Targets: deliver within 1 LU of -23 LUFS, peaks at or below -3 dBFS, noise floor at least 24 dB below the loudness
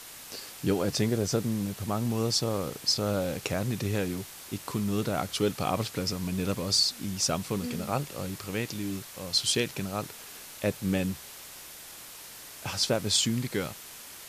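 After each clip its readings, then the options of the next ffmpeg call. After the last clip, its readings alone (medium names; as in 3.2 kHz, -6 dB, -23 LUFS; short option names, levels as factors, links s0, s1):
noise floor -46 dBFS; noise floor target -54 dBFS; loudness -29.5 LUFS; peak level -11.5 dBFS; loudness target -23.0 LUFS
-> -af "afftdn=nr=8:nf=-46"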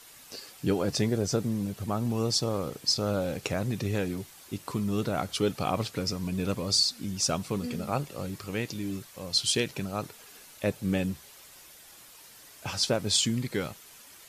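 noise floor -52 dBFS; noise floor target -54 dBFS
-> -af "afftdn=nr=6:nf=-52"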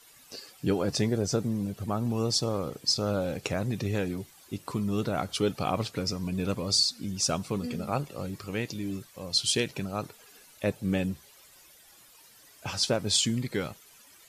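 noise floor -56 dBFS; loudness -29.5 LUFS; peak level -11.5 dBFS; loudness target -23.0 LUFS
-> -af "volume=2.11"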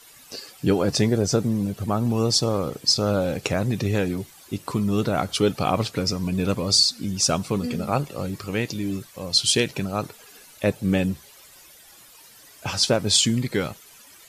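loudness -23.0 LUFS; peak level -5.0 dBFS; noise floor -49 dBFS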